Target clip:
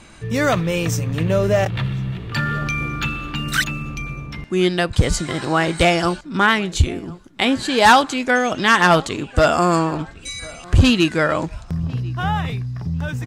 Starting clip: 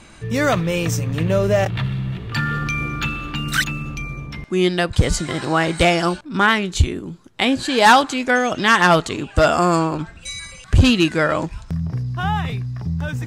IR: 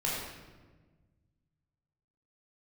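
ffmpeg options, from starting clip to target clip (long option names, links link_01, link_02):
-filter_complex "[0:a]asplit=2[link_01][link_02];[link_02]adelay=1049,lowpass=frequency=2600:poles=1,volume=-22.5dB,asplit=2[link_03][link_04];[link_04]adelay=1049,lowpass=frequency=2600:poles=1,volume=0.3[link_05];[link_01][link_03][link_05]amix=inputs=3:normalize=0"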